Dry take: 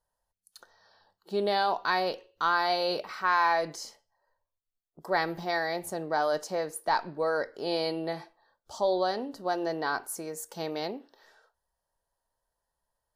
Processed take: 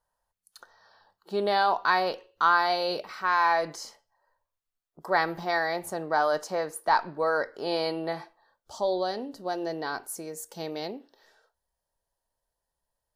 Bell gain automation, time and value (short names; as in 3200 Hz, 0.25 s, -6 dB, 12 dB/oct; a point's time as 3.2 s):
bell 1200 Hz 1.4 oct
2.52 s +5.5 dB
3.07 s -2.5 dB
3.74 s +5.5 dB
8.19 s +5.5 dB
9.08 s -4 dB